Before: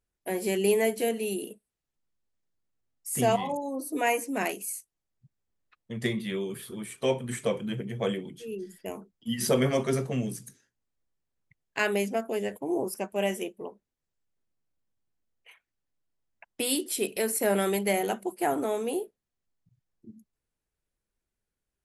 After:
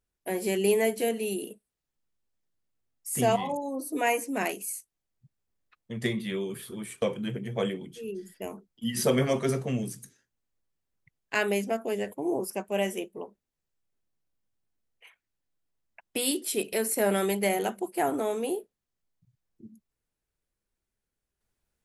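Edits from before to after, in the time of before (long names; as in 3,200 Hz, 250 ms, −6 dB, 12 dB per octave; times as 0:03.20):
0:07.02–0:07.46: remove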